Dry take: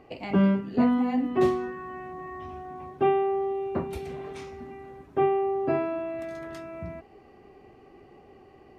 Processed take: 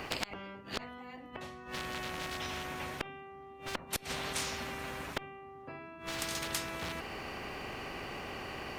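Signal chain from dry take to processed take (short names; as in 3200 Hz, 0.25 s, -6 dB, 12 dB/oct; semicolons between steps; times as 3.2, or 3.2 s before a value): flipped gate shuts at -24 dBFS, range -32 dB; one-sided clip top -33 dBFS; spectral compressor 4:1; gain +11 dB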